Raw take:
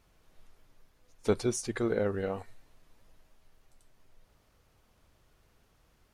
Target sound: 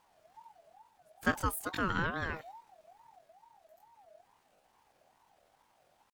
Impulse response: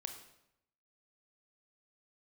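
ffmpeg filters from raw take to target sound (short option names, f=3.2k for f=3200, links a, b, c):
-af "asetrate=72056,aresample=44100,atempo=0.612027,aeval=exprs='val(0)*sin(2*PI*780*n/s+780*0.2/2.3*sin(2*PI*2.3*n/s))':c=same"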